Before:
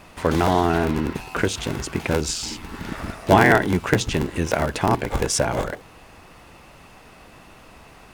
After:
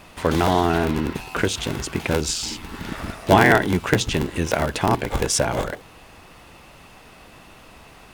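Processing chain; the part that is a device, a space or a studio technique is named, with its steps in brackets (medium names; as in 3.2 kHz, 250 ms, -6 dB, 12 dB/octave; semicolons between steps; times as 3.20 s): presence and air boost (peaking EQ 3.4 kHz +3 dB 0.77 oct; treble shelf 9.3 kHz +3.5 dB)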